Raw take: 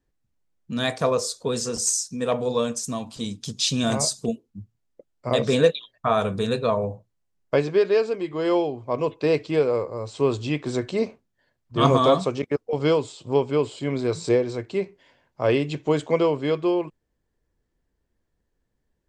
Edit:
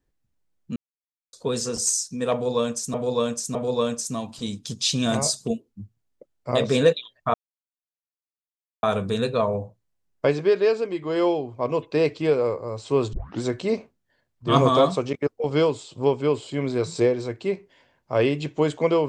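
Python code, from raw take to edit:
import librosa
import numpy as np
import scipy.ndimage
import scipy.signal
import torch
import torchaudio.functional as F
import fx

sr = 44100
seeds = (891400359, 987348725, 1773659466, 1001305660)

y = fx.edit(x, sr, fx.silence(start_s=0.76, length_s=0.57),
    fx.repeat(start_s=2.33, length_s=0.61, count=3),
    fx.insert_silence(at_s=6.12, length_s=1.49),
    fx.tape_start(start_s=10.42, length_s=0.28), tone=tone)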